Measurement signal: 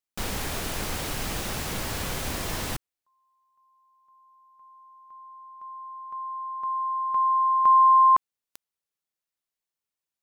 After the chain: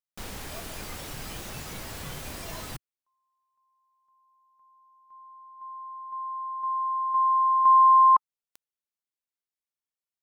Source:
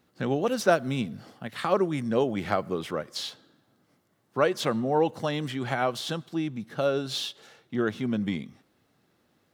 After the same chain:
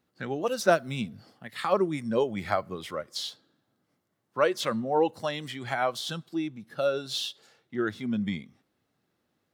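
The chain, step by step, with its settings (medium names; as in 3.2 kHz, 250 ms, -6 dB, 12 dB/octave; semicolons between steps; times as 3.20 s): spectral noise reduction 8 dB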